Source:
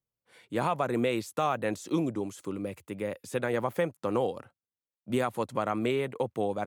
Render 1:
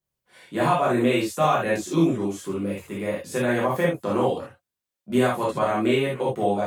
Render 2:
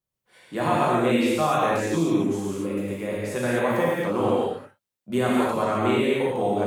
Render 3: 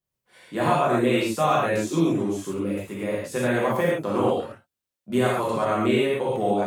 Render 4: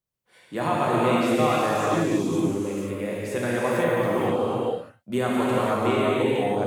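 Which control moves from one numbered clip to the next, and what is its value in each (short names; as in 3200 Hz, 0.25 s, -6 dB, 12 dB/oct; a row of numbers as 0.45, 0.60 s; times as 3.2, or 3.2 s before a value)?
non-linear reverb, gate: 0.1, 0.29, 0.16, 0.53 s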